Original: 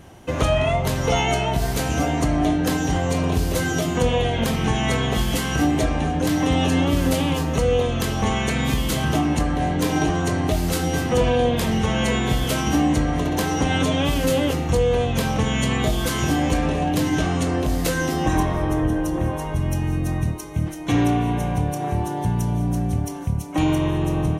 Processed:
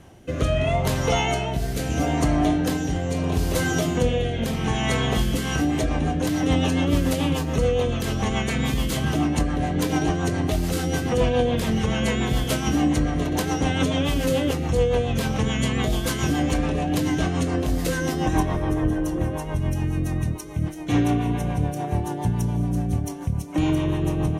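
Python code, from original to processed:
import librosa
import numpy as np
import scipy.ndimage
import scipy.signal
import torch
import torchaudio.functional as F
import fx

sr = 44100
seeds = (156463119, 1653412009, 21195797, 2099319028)

y = fx.rotary_switch(x, sr, hz=0.75, then_hz=7.0, switch_at_s=5.09)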